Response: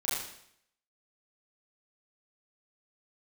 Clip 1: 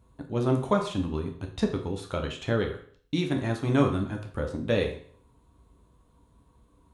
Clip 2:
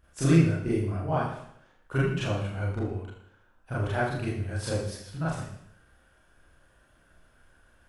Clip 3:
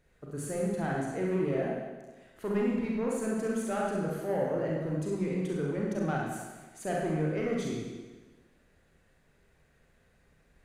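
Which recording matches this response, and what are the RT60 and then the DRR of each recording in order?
2; 0.50, 0.70, 1.3 seconds; 2.5, −9.5, −3.0 decibels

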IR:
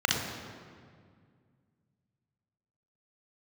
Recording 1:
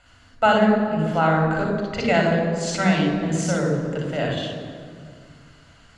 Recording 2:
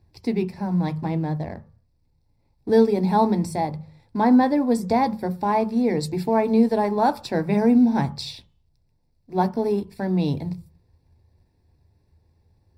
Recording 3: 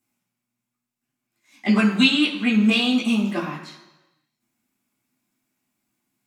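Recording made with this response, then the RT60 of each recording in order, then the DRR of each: 1; 2.0, 0.45, 1.1 seconds; 0.0, 9.5, −5.5 decibels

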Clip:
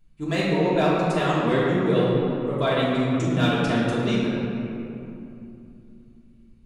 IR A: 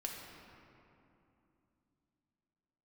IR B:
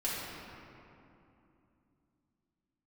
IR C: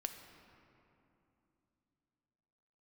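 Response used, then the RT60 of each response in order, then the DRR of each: B; 2.8, 2.8, 3.0 seconds; −1.0, −8.5, 5.5 decibels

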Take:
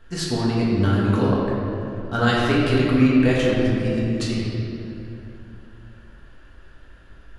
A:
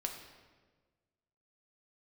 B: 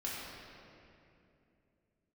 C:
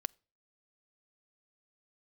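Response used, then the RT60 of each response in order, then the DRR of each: B; 1.4 s, 2.7 s, non-exponential decay; 2.5, −7.0, 17.0 decibels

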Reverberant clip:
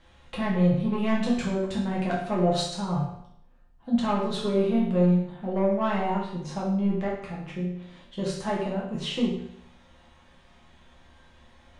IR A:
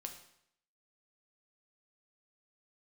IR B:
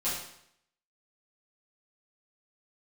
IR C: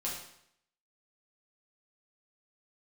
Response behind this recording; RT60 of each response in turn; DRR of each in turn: C; 0.70, 0.70, 0.70 seconds; 3.5, −11.5, −5.5 decibels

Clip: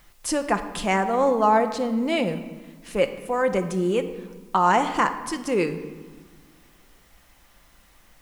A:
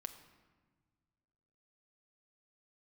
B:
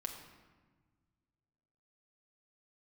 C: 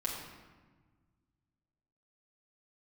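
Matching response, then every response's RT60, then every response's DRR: A; 1.5, 1.4, 1.4 seconds; 7.0, 1.5, −5.0 decibels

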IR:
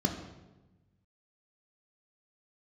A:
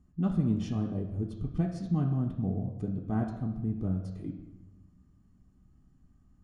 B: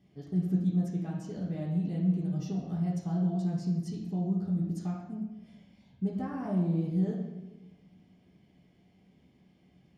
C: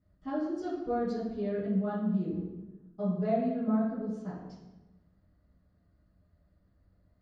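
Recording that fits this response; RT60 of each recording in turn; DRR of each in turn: A; 1.1, 1.1, 1.1 seconds; 3.0, −4.0, −11.0 decibels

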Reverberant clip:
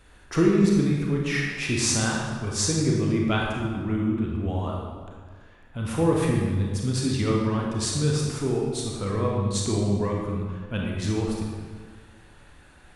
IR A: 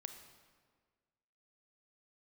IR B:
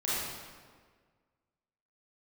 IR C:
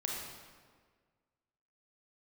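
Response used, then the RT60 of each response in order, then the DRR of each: C; 1.6, 1.7, 1.7 seconds; 7.0, −9.5, −2.0 decibels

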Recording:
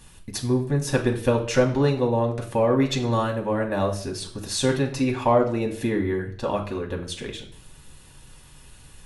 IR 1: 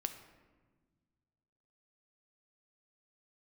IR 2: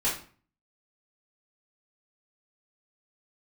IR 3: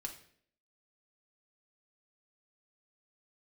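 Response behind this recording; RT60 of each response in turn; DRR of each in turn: 3; 1.4, 0.40, 0.60 seconds; 7.5, −9.5, 1.0 decibels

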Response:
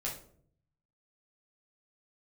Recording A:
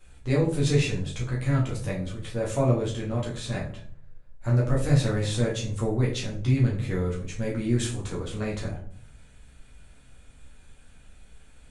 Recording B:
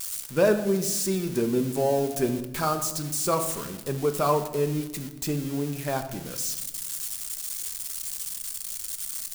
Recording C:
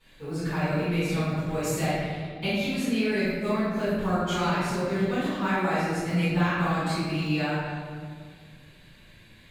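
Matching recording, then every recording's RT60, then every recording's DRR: A; 0.60, 1.2, 1.9 seconds; −5.0, 7.0, −17.5 decibels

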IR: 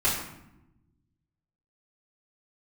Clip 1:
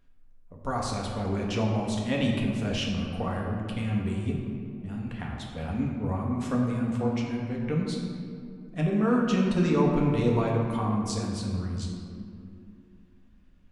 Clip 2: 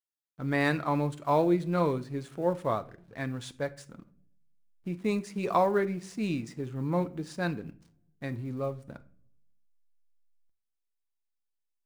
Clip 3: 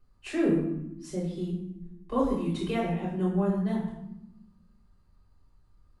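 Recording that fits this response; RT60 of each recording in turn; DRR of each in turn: 3; 2.6 s, non-exponential decay, 0.90 s; −2.0, 10.0, −11.5 decibels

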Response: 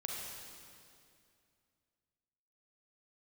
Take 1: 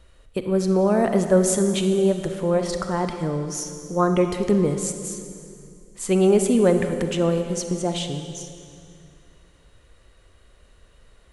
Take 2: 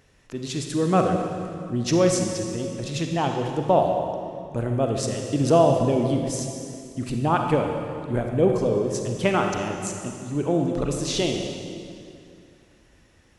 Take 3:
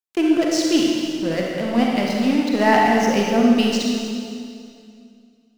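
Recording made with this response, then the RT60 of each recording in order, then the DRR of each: 3; 2.4, 2.4, 2.4 seconds; 6.5, 2.5, −2.0 decibels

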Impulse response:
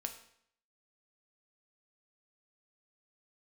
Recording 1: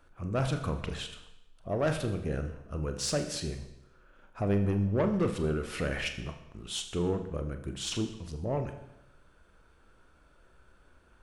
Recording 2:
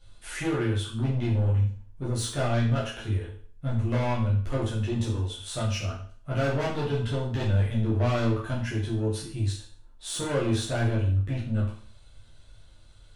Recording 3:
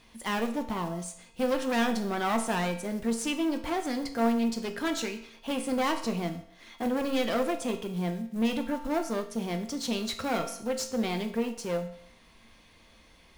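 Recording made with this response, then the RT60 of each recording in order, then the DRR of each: 3; 0.90, 0.45, 0.65 seconds; 6.5, −8.0, 4.5 decibels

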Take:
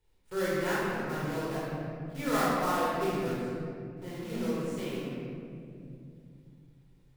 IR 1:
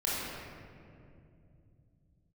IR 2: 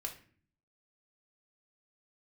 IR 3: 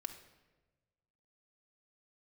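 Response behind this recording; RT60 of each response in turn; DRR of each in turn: 1; 2.5, 0.45, 1.2 seconds; −8.0, 2.0, 4.5 decibels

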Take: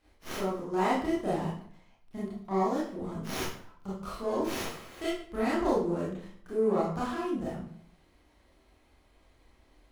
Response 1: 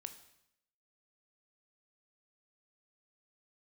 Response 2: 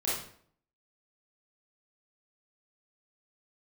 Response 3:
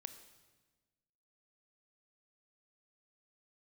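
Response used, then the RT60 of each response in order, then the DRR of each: 2; 0.75, 0.60, 1.3 seconds; 8.5, −8.5, 9.5 decibels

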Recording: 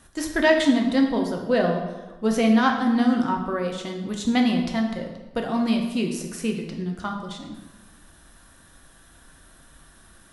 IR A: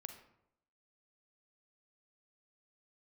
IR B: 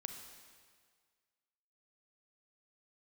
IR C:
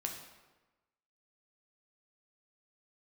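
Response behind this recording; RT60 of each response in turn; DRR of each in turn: C; 0.80, 1.8, 1.2 seconds; 6.0, 5.0, 1.5 decibels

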